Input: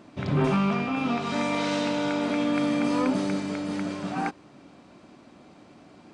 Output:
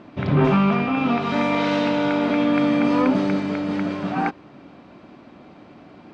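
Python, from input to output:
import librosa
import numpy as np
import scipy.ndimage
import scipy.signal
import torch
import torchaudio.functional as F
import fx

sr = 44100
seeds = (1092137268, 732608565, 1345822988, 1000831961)

y = scipy.signal.sosfilt(scipy.signal.butter(2, 3400.0, 'lowpass', fs=sr, output='sos'), x)
y = F.gain(torch.from_numpy(y), 6.0).numpy()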